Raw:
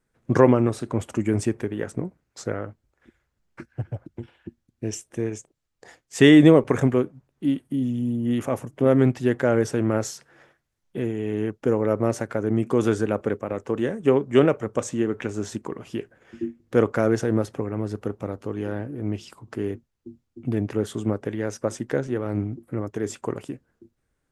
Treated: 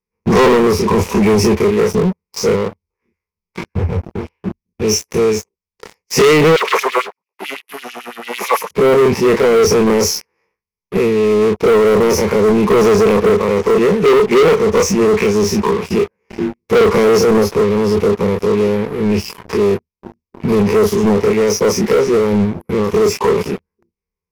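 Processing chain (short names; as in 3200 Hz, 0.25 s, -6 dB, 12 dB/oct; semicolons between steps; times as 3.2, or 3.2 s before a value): spectral dilation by 60 ms; ripple EQ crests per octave 0.83, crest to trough 18 dB; sample leveller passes 5; 6.56–8.71 LFO high-pass sine 9 Hz 620–3500 Hz; gain -8.5 dB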